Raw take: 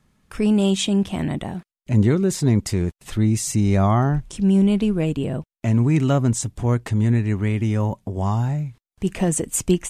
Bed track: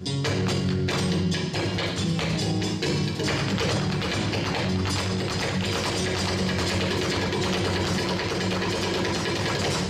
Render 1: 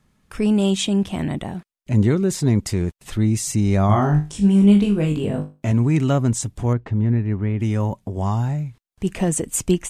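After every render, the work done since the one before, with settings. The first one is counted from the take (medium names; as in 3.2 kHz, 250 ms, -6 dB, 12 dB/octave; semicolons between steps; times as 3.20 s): 3.87–5.72 s: flutter echo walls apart 3.4 m, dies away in 0.28 s; 6.73–7.60 s: tape spacing loss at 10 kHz 33 dB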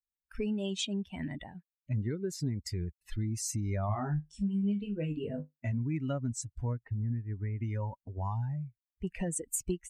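expander on every frequency bin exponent 2; compression 4:1, threshold -32 dBFS, peak gain reduction 18 dB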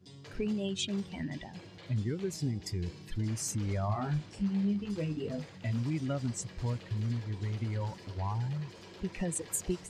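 add bed track -24.5 dB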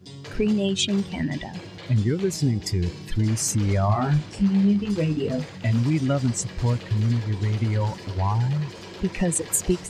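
trim +11 dB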